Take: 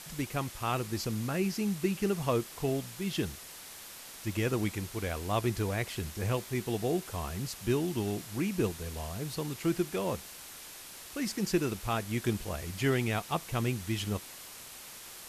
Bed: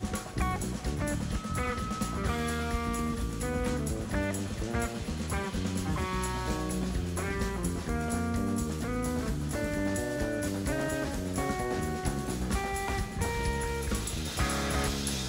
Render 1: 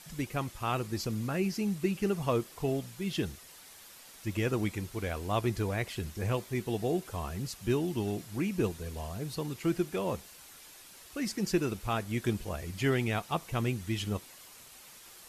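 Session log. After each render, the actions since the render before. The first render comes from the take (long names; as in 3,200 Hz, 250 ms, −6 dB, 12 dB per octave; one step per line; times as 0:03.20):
broadband denoise 7 dB, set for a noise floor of −48 dBFS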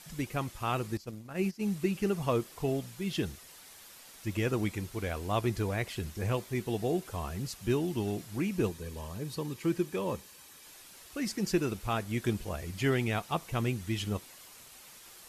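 0:00.97–0:01.63: noise gate −32 dBFS, range −16 dB
0:08.70–0:10.66: notch comb filter 700 Hz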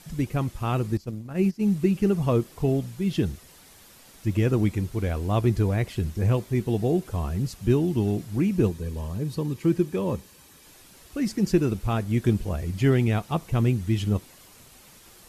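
low-shelf EQ 440 Hz +11.5 dB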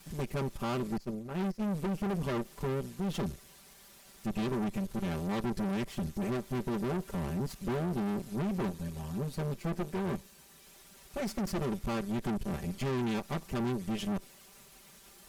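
lower of the sound and its delayed copy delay 5.1 ms
tube saturation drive 30 dB, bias 0.65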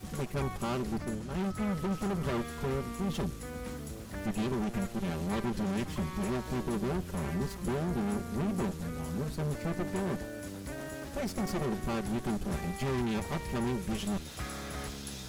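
mix in bed −9.5 dB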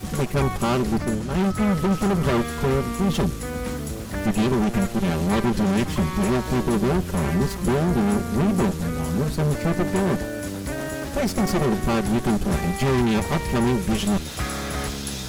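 level +11.5 dB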